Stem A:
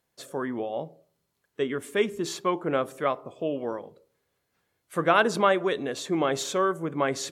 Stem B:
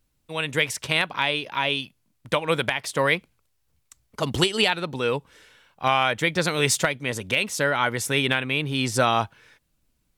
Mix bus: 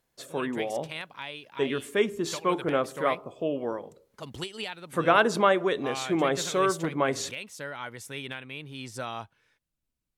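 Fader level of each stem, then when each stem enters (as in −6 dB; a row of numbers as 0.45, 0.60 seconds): 0.0, −15.0 decibels; 0.00, 0.00 seconds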